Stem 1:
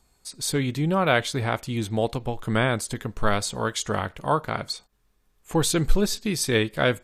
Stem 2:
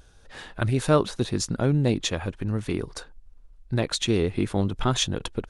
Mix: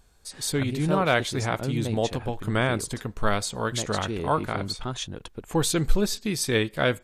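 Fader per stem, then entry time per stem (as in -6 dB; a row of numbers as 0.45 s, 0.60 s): -1.5 dB, -8.5 dB; 0.00 s, 0.00 s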